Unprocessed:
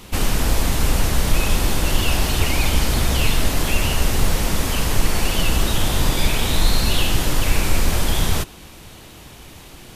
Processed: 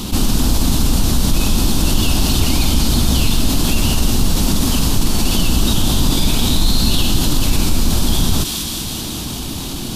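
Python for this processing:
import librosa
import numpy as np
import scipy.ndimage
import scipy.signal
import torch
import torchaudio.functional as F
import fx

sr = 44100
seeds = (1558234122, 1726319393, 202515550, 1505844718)

y = fx.graphic_eq(x, sr, hz=(250, 500, 2000, 4000), db=(8, -7, -12, 5))
y = fx.echo_wet_highpass(y, sr, ms=195, feedback_pct=69, hz=1800.0, wet_db=-11.5)
y = fx.env_flatten(y, sr, amount_pct=50)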